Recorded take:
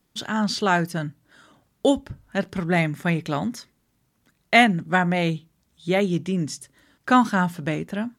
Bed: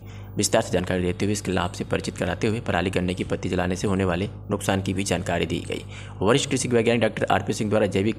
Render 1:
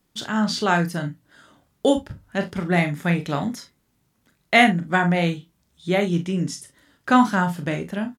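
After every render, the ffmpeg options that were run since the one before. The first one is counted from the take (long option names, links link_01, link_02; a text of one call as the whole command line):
ffmpeg -i in.wav -filter_complex "[0:a]asplit=2[link_01][link_02];[link_02]adelay=28,volume=-12dB[link_03];[link_01][link_03]amix=inputs=2:normalize=0,asplit=2[link_04][link_05];[link_05]aecho=0:1:41|52:0.316|0.15[link_06];[link_04][link_06]amix=inputs=2:normalize=0" out.wav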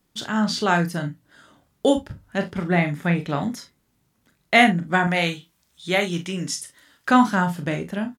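ffmpeg -i in.wav -filter_complex "[0:a]asettb=1/sr,asplit=3[link_01][link_02][link_03];[link_01]atrim=end=2.424[link_04];[link_02]atrim=start=2.42:end=3.43,asetpts=PTS-STARTPTS,afade=type=in:duration=0.004:curve=qsin,afade=type=out:start_time=1.006:duration=0.004:curve=qsin,acrossover=split=3700[link_05][link_06];[link_06]acompressor=threshold=-49dB:ratio=4:attack=1:release=60[link_07];[link_05][link_07]amix=inputs=2:normalize=0[link_08];[link_03]atrim=start=3.426[link_09];[link_04][link_08]acrossfade=duration=0.004:curve1=hsin:curve2=qsin[link_10];[link_10][link_09]acrossfade=duration=0.004:curve1=qsin:curve2=hsin,asettb=1/sr,asplit=3[link_11][link_12][link_13];[link_11]atrim=end=5.074[link_14];[link_12]atrim=start=5.07:end=7.11,asetpts=PTS-STARTPTS,afade=type=in:duration=0.004:curve=qsin,afade=type=out:start_time=2.036:duration=0.004:curve=qsin,tiltshelf=frequency=700:gain=-6[link_15];[link_13]atrim=start=7.106[link_16];[link_14][link_15]acrossfade=duration=0.004:curve1=hsin:curve2=qsin[link_17];[link_17][link_16]acrossfade=duration=0.004:curve1=qsin:curve2=hsin" out.wav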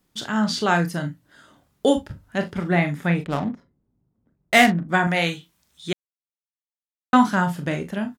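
ffmpeg -i in.wav -filter_complex "[0:a]asplit=3[link_01][link_02][link_03];[link_01]afade=type=out:start_time=3.23:duration=0.02[link_04];[link_02]adynamicsmooth=sensitivity=3.5:basefreq=550,afade=type=in:start_time=3.23:duration=0.02,afade=type=out:start_time=4.88:duration=0.02[link_05];[link_03]afade=type=in:start_time=4.88:duration=0.02[link_06];[link_04][link_05][link_06]amix=inputs=3:normalize=0,asplit=3[link_07][link_08][link_09];[link_07]atrim=end=5.93,asetpts=PTS-STARTPTS,afade=type=out:start_time=5.926:duration=0.004:curve=hsin[link_10];[link_08]atrim=start=5.93:end=7.13,asetpts=PTS-STARTPTS,volume=0[link_11];[link_09]atrim=start=7.13,asetpts=PTS-STARTPTS,afade=type=in:duration=0.004:curve=hsin[link_12];[link_10][link_11][link_12]concat=n=3:v=0:a=1" out.wav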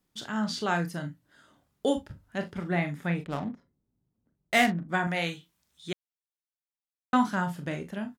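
ffmpeg -i in.wav -af "volume=-8dB" out.wav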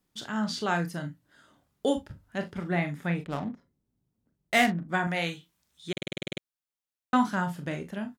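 ffmpeg -i in.wav -filter_complex "[0:a]asplit=11[link_01][link_02][link_03][link_04][link_05][link_06][link_07][link_08][link_09][link_10][link_11];[link_01]atrim=end=5.972[link_12];[link_02]atrim=start=5.918:end=5.972[link_13];[link_03]atrim=start=5.918:end=5.972[link_14];[link_04]atrim=start=5.918:end=5.972[link_15];[link_05]atrim=start=5.918:end=5.972[link_16];[link_06]atrim=start=5.918:end=5.972[link_17];[link_07]atrim=start=5.918:end=5.972[link_18];[link_08]atrim=start=5.918:end=5.972[link_19];[link_09]atrim=start=5.918:end=5.972[link_20];[link_10]atrim=start=5.918:end=5.972[link_21];[link_11]atrim=start=6.418[link_22];[link_12][link_13]acrossfade=duration=0.004:curve1=hsin:curve2=hsin[link_23];[link_23][link_14]acrossfade=duration=0.004:curve1=hsin:curve2=hsin[link_24];[link_24][link_15]acrossfade=duration=0.004:curve1=hsin:curve2=hsin[link_25];[link_25][link_16]acrossfade=duration=0.004:curve1=hsin:curve2=hsin[link_26];[link_26][link_17]acrossfade=duration=0.004:curve1=hsin:curve2=hsin[link_27];[link_27][link_18]acrossfade=duration=0.004:curve1=hsin:curve2=hsin[link_28];[link_28][link_19]acrossfade=duration=0.004:curve1=hsin:curve2=hsin[link_29];[link_29][link_20]acrossfade=duration=0.004:curve1=hsin:curve2=hsin[link_30];[link_30][link_21]acrossfade=duration=0.004:curve1=hsin:curve2=hsin[link_31];[link_31][link_22]acrossfade=duration=0.004:curve1=hsin:curve2=hsin" out.wav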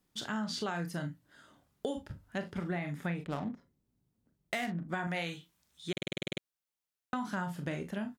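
ffmpeg -i in.wav -af "alimiter=limit=-19dB:level=0:latency=1:release=96,acompressor=threshold=-32dB:ratio=6" out.wav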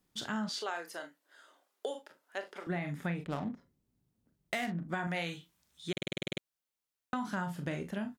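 ffmpeg -i in.wav -filter_complex "[0:a]asettb=1/sr,asplit=3[link_01][link_02][link_03];[link_01]atrim=end=0.494[link_04];[link_02]atrim=start=0.49:end=2.67,asetpts=PTS-STARTPTS,afade=type=in:duration=0.004:curve=qsin,afade=type=out:start_time=2.176:duration=0.004:curve=qsin,highpass=frequency=400:width=0.5412,highpass=frequency=400:width=1.3066[link_05];[link_03]atrim=start=2.666[link_06];[link_04][link_05]acrossfade=duration=0.004:curve1=hsin:curve2=qsin[link_07];[link_07][link_06]acrossfade=duration=0.004:curve1=qsin:curve2=hsin" out.wav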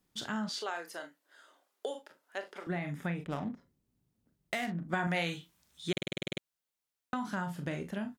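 ffmpeg -i in.wav -filter_complex "[0:a]asettb=1/sr,asplit=3[link_01][link_02][link_03];[link_01]atrim=end=2.854[link_04];[link_02]atrim=start=2.85:end=3.45,asetpts=PTS-STARTPTS,afade=type=in:duration=0.004:curve=qsin,afade=type=out:start_time=0.596:duration=0.004:curve=qsin,bandreject=frequency=4300:width=7.4[link_05];[link_03]atrim=start=3.446[link_06];[link_04][link_05]acrossfade=duration=0.004:curve1=hsin:curve2=qsin[link_07];[link_07][link_06]acrossfade=duration=0.004:curve1=qsin:curve2=hsin,asplit=3[link_08][link_09][link_10];[link_08]atrim=end=4.932[link_11];[link_09]atrim=start=4.928:end=6.022,asetpts=PTS-STARTPTS,volume=3.5dB[link_12];[link_10]atrim=start=6.018[link_13];[link_11][link_12]acrossfade=duration=0.004:curve1=hsin:curve2=hsin[link_14];[link_14][link_13]acrossfade=duration=0.004:curve1=hsin:curve2=hsin" out.wav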